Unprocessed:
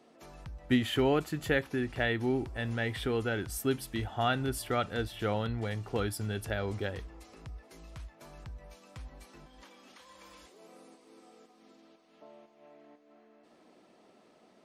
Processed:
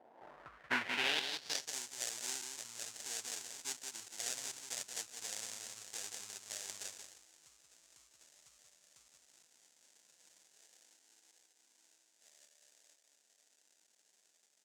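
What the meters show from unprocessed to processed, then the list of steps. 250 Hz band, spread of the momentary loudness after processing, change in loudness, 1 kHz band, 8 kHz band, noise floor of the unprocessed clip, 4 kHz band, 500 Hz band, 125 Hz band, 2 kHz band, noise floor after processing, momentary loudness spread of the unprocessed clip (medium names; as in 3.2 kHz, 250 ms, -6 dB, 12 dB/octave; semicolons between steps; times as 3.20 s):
-23.0 dB, 12 LU, -7.5 dB, -12.0 dB, +6.5 dB, -63 dBFS, -0.5 dB, -21.0 dB, -32.0 dB, -5.5 dB, -74 dBFS, 21 LU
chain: feedback delay 179 ms, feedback 15%, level -5.5 dB; sample-rate reducer 1.2 kHz, jitter 20%; band-pass sweep 740 Hz -> 7.1 kHz, 0.03–1.76 s; trim +6 dB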